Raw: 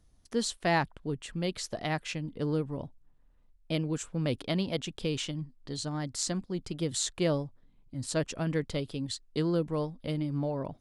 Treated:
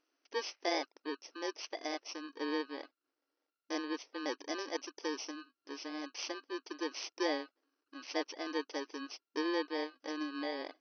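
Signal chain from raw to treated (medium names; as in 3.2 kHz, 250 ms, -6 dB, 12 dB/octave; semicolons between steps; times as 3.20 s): bit-reversed sample order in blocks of 32 samples; brick-wall FIR band-pass 270–6200 Hz; trim -3 dB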